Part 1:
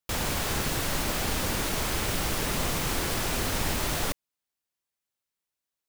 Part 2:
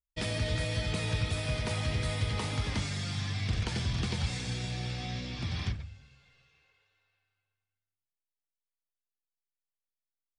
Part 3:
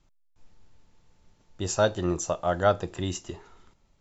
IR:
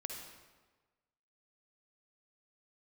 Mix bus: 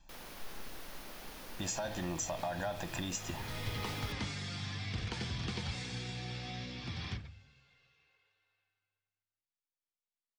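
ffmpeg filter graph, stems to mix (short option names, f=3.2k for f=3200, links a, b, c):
-filter_complex "[0:a]equalizer=f=7.7k:t=o:w=0.38:g=-8.5,volume=-19dB[a];[1:a]lowpass=6.7k,lowshelf=f=100:g=-9,bandreject=f=610:w=12,adelay=1450,volume=-3.5dB[b];[2:a]aecho=1:1:1.2:0.95,alimiter=limit=-24dB:level=0:latency=1,volume=1.5dB,asplit=2[c][d];[d]apad=whole_len=521771[e];[b][e]sidechaincompress=threshold=-40dB:ratio=8:attack=47:release=497[f];[a][c]amix=inputs=2:normalize=0,equalizer=f=90:t=o:w=1.3:g=-13,acompressor=threshold=-34dB:ratio=6,volume=0dB[g];[f][g]amix=inputs=2:normalize=0"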